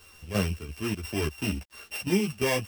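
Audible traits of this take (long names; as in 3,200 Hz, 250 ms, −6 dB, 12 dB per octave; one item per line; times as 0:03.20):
a buzz of ramps at a fixed pitch in blocks of 16 samples
chopped level 2.9 Hz, depth 65%, duty 70%
a quantiser's noise floor 10 bits, dither none
a shimmering, thickened sound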